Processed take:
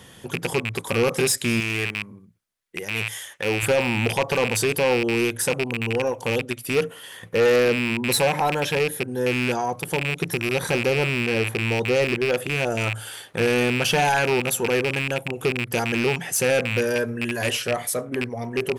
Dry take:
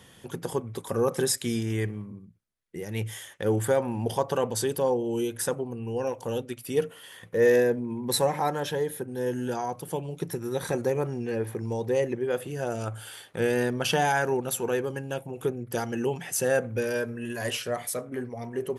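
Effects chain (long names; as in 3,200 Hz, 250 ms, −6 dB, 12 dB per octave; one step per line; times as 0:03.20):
loose part that buzzes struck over −34 dBFS, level −18 dBFS
0:01.60–0:03.63: low-shelf EQ 430 Hz −10 dB
soft clipping −20 dBFS, distortion −14 dB
level +6.5 dB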